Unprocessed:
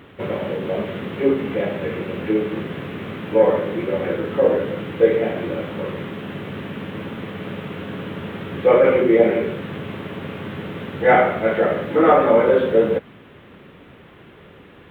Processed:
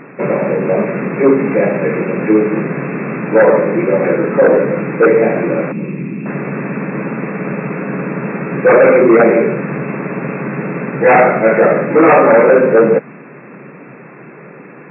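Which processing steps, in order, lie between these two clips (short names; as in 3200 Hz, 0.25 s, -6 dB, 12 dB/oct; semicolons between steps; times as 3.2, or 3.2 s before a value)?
5.72–6.26 band shelf 920 Hz -16 dB 2.4 oct; sine folder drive 9 dB, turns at -1 dBFS; FFT band-pass 120–2700 Hz; gain -2.5 dB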